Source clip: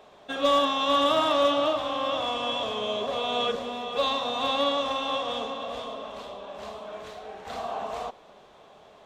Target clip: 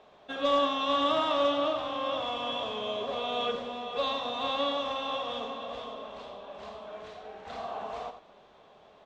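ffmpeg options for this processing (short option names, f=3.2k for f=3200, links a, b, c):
-filter_complex "[0:a]lowpass=5.3k,asplit=2[a][b];[b]aecho=0:1:88:0.299[c];[a][c]amix=inputs=2:normalize=0,volume=-4.5dB"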